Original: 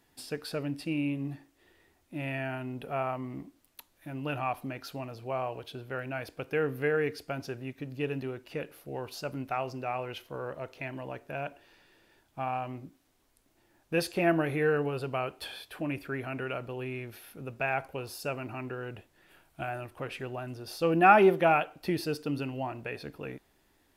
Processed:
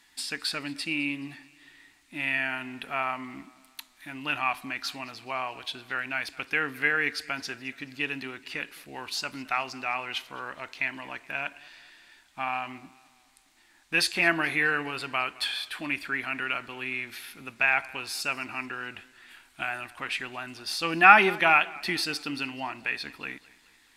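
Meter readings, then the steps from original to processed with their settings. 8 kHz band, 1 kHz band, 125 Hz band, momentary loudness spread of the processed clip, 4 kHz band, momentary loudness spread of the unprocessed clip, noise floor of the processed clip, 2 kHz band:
+9.0 dB, +3.0 dB, -8.5 dB, 16 LU, +11.5 dB, 14 LU, -61 dBFS, +10.0 dB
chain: graphic EQ 125/250/500/1000/2000/4000/8000 Hz -10/+4/-10/+6/+11/+10/+11 dB; modulated delay 213 ms, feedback 48%, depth 64 cents, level -22 dB; trim -1.5 dB

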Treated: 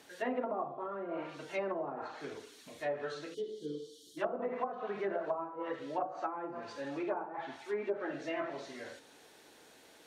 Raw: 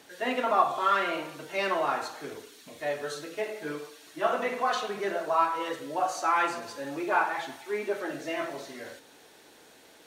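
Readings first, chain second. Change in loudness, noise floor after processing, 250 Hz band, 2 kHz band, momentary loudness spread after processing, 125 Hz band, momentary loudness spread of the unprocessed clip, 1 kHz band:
-9.5 dB, -60 dBFS, -4.0 dB, -12.5 dB, 13 LU, -4.0 dB, 15 LU, -12.5 dB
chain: time-frequency box 3.34–4.17 s, 550–2900 Hz -29 dB; low-pass that closes with the level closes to 480 Hz, closed at -23.5 dBFS; trim -4 dB

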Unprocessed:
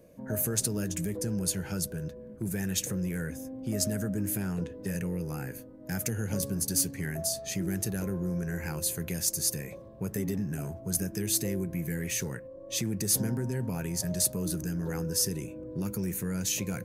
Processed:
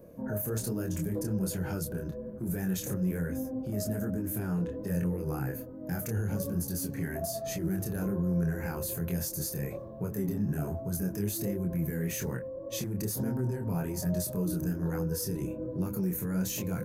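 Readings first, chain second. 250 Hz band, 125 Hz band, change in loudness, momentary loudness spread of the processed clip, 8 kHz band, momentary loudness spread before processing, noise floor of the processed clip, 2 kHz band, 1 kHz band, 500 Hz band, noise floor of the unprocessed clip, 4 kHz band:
+1.0 dB, +1.0 dB, -1.5 dB, 5 LU, -9.0 dB, 9 LU, -41 dBFS, -3.0 dB, +2.0 dB, +1.0 dB, -46 dBFS, -9.0 dB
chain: high-order bell 4.3 kHz -9 dB 2.7 oct; peak limiter -29.5 dBFS, peak gain reduction 12 dB; chorus 1.2 Hz, depth 6.8 ms; trim +8 dB

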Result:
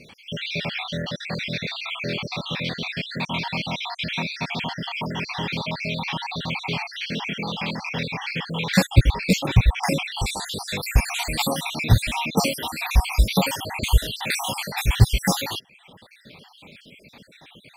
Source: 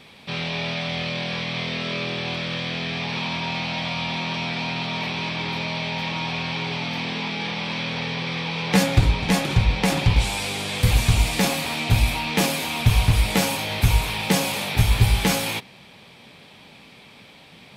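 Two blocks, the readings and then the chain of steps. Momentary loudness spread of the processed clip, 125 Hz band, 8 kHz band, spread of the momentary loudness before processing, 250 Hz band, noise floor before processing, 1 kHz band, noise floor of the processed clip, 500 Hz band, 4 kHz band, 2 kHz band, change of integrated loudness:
9 LU, -1.5 dB, -2.0 dB, 7 LU, -1.5 dB, -48 dBFS, -1.0 dB, -52 dBFS, -1.5 dB, -2.0 dB, -1.5 dB, -1.5 dB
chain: random holes in the spectrogram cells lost 62%; companded quantiser 8-bit; reverb removal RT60 0.78 s; trim +3.5 dB

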